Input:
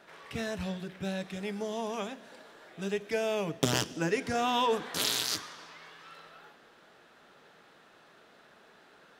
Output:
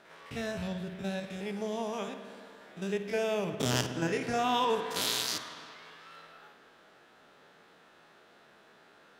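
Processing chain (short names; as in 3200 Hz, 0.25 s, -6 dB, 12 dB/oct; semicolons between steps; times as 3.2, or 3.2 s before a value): stepped spectrum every 50 ms; spring tank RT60 2 s, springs 56 ms, chirp 45 ms, DRR 8.5 dB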